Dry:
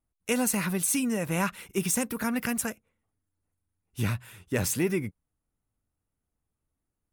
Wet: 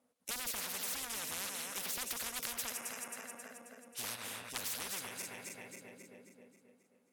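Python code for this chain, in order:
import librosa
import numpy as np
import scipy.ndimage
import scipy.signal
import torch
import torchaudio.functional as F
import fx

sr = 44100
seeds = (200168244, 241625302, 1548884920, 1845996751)

y = fx.reverse_delay_fb(x, sr, ms=134, feedback_pct=70, wet_db=-14.0)
y = fx.double_bandpass(y, sr, hz=350.0, octaves=0.97)
y = fx.fold_sine(y, sr, drive_db=10, ceiling_db=-20.0)
y = np.diff(y, prepend=0.0)
y = fx.spectral_comp(y, sr, ratio=10.0)
y = F.gain(torch.from_numpy(y), 11.0).numpy()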